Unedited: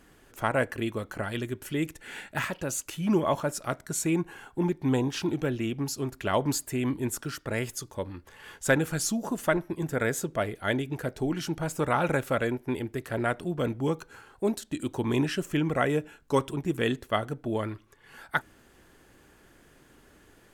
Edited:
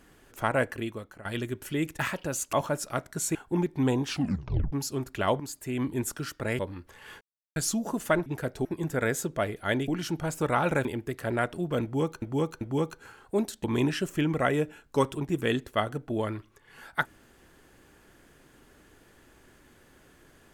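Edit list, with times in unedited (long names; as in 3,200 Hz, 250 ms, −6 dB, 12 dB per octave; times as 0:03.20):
0:00.64–0:01.25: fade out, to −17.5 dB
0:01.99–0:02.36: remove
0:02.90–0:03.27: remove
0:04.09–0:04.41: remove
0:05.15: tape stop 0.63 s
0:06.46–0:06.96: fade in, from −14 dB
0:07.65–0:07.97: remove
0:08.59–0:08.94: silence
0:10.87–0:11.26: move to 0:09.64
0:12.23–0:12.72: remove
0:13.70–0:14.09: repeat, 3 plays
0:14.73–0:15.00: remove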